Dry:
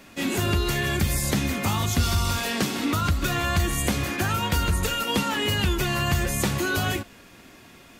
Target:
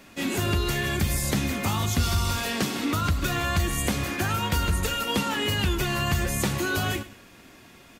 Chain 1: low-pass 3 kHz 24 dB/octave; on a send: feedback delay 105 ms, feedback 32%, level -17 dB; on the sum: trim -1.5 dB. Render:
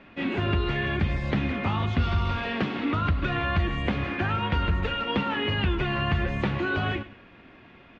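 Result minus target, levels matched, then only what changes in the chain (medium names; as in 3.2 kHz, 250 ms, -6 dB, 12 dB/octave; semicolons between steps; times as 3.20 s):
4 kHz band -3.5 dB
remove: low-pass 3 kHz 24 dB/octave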